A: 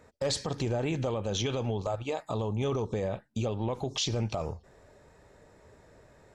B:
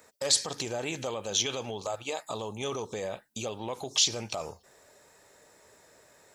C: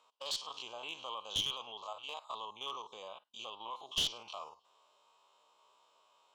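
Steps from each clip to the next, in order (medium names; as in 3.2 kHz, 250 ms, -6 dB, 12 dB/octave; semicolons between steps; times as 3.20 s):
RIAA curve recording
spectrogram pixelated in time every 50 ms; two resonant band-passes 1.8 kHz, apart 1.5 oct; one-sided clip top -36.5 dBFS; trim +5 dB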